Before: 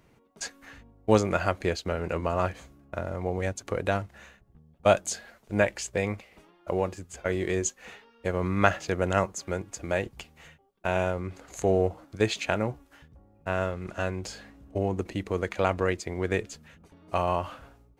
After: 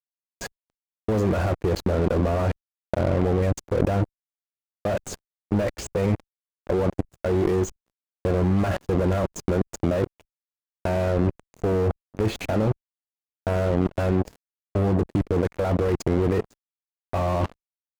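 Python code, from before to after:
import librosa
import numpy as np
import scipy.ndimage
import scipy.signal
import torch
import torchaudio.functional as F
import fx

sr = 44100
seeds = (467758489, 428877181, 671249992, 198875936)

y = fx.notch(x, sr, hz=1300.0, q=21.0)
y = fx.fuzz(y, sr, gain_db=39.0, gate_db=-36.0)
y = fx.level_steps(y, sr, step_db=24)
y = fx.tilt_shelf(y, sr, db=9.0, hz=1200.0)
y = F.gain(torch.from_numpy(y), -4.0).numpy()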